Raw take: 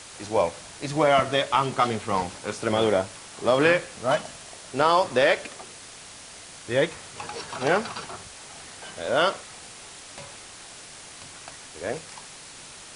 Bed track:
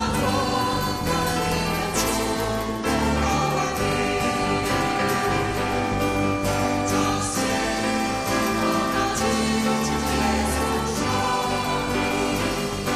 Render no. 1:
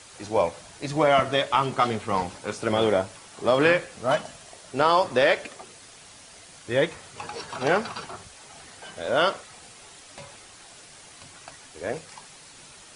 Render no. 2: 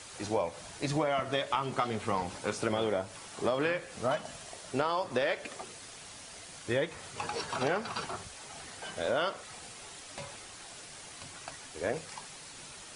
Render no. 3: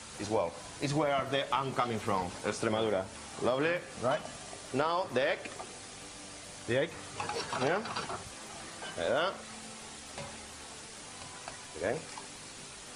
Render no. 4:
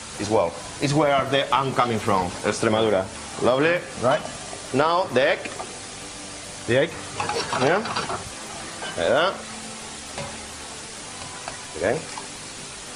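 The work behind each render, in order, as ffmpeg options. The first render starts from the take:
-af "afftdn=nr=6:nf=-44"
-af "acompressor=threshold=-27dB:ratio=6"
-filter_complex "[1:a]volume=-30.5dB[a];[0:a][a]amix=inputs=2:normalize=0"
-af "volume=10.5dB"

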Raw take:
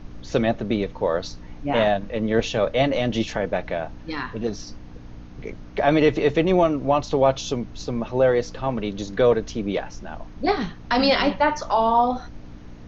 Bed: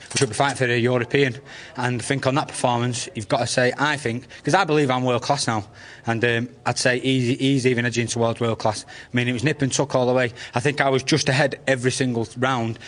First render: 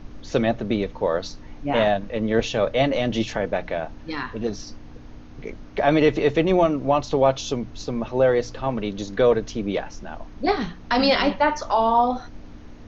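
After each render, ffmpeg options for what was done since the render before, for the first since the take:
-af "bandreject=f=60:t=h:w=4,bandreject=f=120:t=h:w=4,bandreject=f=180:t=h:w=4"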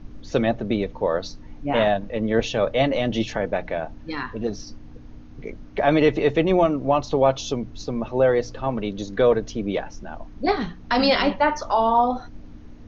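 -af "afftdn=nr=6:nf=-41"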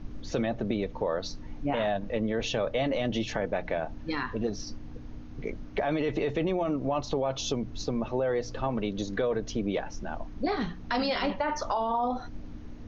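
-af "alimiter=limit=-14.5dB:level=0:latency=1:release=15,acompressor=threshold=-27dB:ratio=2.5"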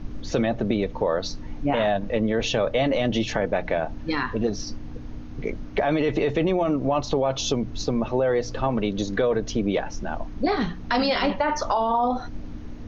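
-af "volume=6dB"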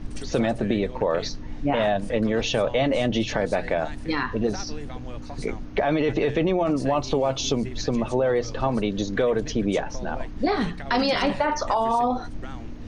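-filter_complex "[1:a]volume=-20.5dB[a];[0:a][a]amix=inputs=2:normalize=0"

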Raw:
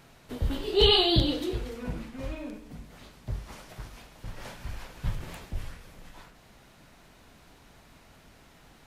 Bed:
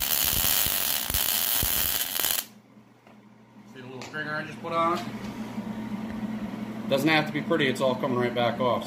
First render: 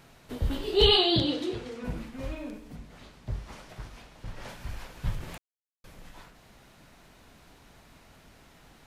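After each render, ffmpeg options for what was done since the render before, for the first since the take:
-filter_complex "[0:a]asettb=1/sr,asplit=3[a][b][c];[a]atrim=end=0.974[d];[b]atrim=start=0.97:end=1.84,asetpts=PTS-STARTPTS,afade=t=in:d=0.004:c=qsin,afade=t=out:st=0.866:d=0.004:c=qsin,highpass=120,lowpass=7.7k[e];[c]atrim=start=1.836[f];[d][e]acrossfade=d=0.004:c1=hsin:c2=qsin[g];[g][f]acrossfade=d=0.004:c1=qsin:c2=hsin,asettb=1/sr,asplit=3[h][i][j];[h]atrim=end=2.764[k];[i]atrim=start=2.76:end=4.49,asetpts=PTS-STARTPTS,afade=t=in:d=0.004:c=qsin,afade=t=out:st=1.726:d=0.004:c=qsin,highshelf=f=11k:g=-11.5[l];[j]atrim=start=4.486[m];[k][l]acrossfade=d=0.004:c1=hsin:c2=qsin[n];[n][m]acrossfade=d=0.004:c1=qsin:c2=hsin,asplit=3[o][p][q];[o]atrim=end=5.38,asetpts=PTS-STARTPTS,afade=t=out:st=5.376:d=0.004:c=hsin[r];[p]atrim=start=5.38:end=5.84,asetpts=PTS-STARTPTS,volume=0[s];[q]atrim=start=5.84,asetpts=PTS-STARTPTS,afade=t=in:d=0.004:c=hsin[t];[r][s][t]concat=n=3:v=0:a=1"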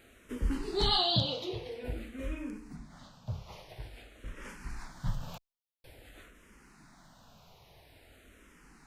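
-filter_complex "[0:a]asplit=2[a][b];[b]afreqshift=-0.49[c];[a][c]amix=inputs=2:normalize=1"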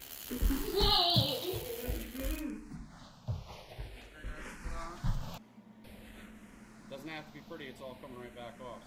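-filter_complex "[1:a]volume=-22dB[a];[0:a][a]amix=inputs=2:normalize=0"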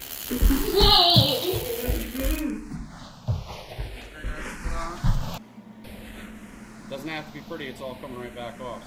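-af "volume=11dB"

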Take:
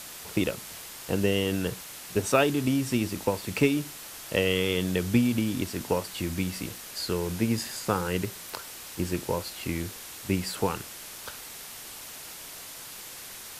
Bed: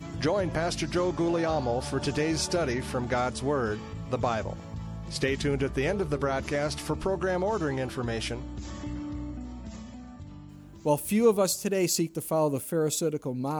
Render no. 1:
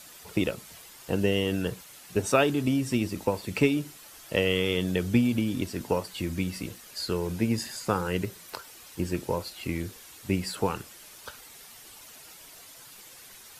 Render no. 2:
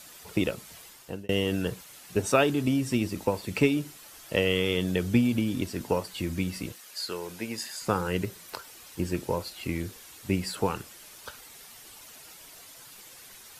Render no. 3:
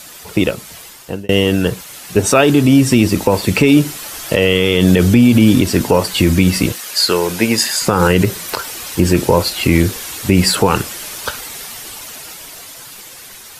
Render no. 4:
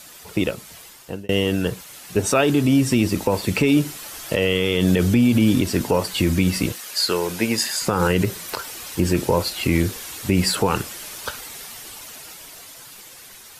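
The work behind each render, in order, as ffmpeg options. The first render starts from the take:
-af "afftdn=nr=9:nf=-43"
-filter_complex "[0:a]asettb=1/sr,asplit=3[a][b][c];[a]atrim=end=6.724[d];[b]atrim=start=6.72:end=7.82,asetpts=PTS-STARTPTS,afade=t=in:d=0.004:c=qsin,afade=t=out:st=1.096:d=0.004:c=qsin,highpass=f=710:p=1[e];[c]atrim=start=7.816[f];[d][e]acrossfade=d=0.004:c1=hsin:c2=qsin[g];[g][f]acrossfade=d=0.004:c1=qsin:c2=hsin,asplit=2[h][i];[h]atrim=end=1.29,asetpts=PTS-STARTPTS,afade=t=out:st=0.87:d=0.42[j];[i]atrim=start=1.29,asetpts=PTS-STARTPTS,afade=t=in:d=0.004:c=hsin[k];[j][k]concat=n=2:v=0:a=1"
-af "dynaudnorm=f=570:g=9:m=11.5dB,alimiter=level_in=12.5dB:limit=-1dB:release=50:level=0:latency=1"
-af "volume=-7dB"

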